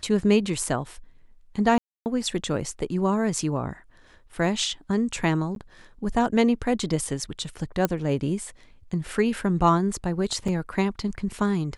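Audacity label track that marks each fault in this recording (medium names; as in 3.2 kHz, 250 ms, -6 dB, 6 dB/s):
1.780000	2.060000	dropout 279 ms
5.550000	5.560000	dropout 12 ms
7.850000	7.850000	pop -8 dBFS
10.480000	10.480000	dropout 4.2 ms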